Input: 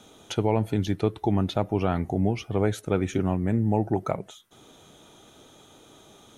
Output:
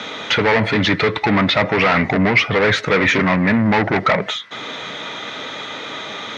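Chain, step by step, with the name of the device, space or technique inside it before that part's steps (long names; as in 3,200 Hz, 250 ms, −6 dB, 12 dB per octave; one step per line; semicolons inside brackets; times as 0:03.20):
overdrive pedal into a guitar cabinet (mid-hump overdrive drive 31 dB, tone 7,700 Hz, clips at −9.5 dBFS; loudspeaker in its box 83–4,500 Hz, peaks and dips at 360 Hz −9 dB, 750 Hz −7 dB, 2,000 Hz +10 dB, 3,100 Hz −4 dB)
level +4 dB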